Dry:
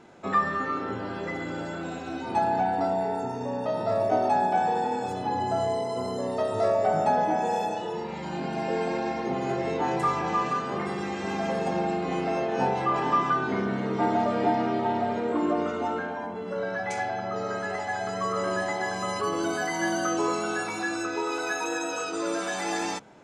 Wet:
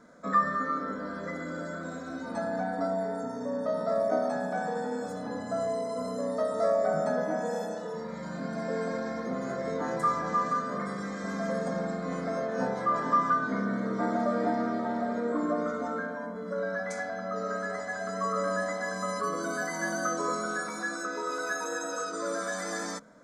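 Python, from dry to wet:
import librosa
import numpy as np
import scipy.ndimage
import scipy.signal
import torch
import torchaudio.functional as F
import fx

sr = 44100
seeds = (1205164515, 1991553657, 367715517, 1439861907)

y = fx.fixed_phaser(x, sr, hz=550.0, stages=8)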